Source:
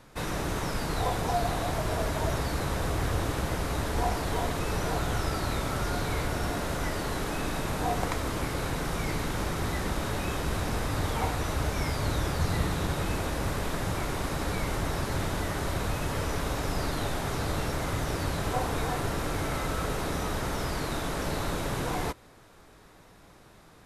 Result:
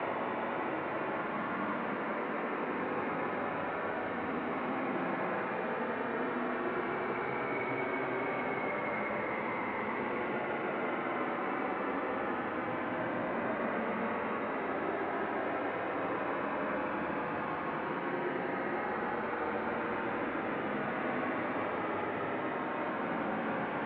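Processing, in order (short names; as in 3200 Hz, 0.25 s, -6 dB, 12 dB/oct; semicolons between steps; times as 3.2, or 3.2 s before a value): Paulstretch 20×, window 0.10 s, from 14.17; mistuned SSB -60 Hz 280–2600 Hz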